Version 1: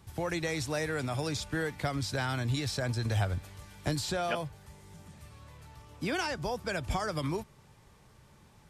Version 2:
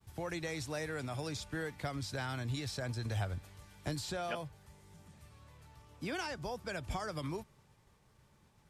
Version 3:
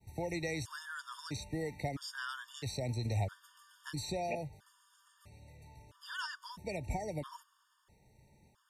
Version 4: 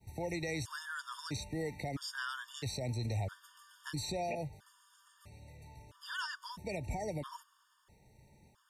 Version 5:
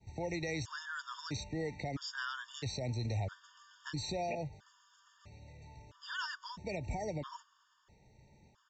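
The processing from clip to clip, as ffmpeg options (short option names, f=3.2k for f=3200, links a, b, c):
-af "agate=range=-33dB:threshold=-56dB:ratio=3:detection=peak,volume=-6.5dB"
-af "afftfilt=real='re*gt(sin(2*PI*0.76*pts/sr)*(1-2*mod(floor(b*sr/1024/920),2)),0)':imag='im*gt(sin(2*PI*0.76*pts/sr)*(1-2*mod(floor(b*sr/1024/920),2)),0)':win_size=1024:overlap=0.75,volume=2.5dB"
-af "alimiter=level_in=6.5dB:limit=-24dB:level=0:latency=1:release=62,volume=-6.5dB,volume=2dB"
-af "aresample=16000,aresample=44100"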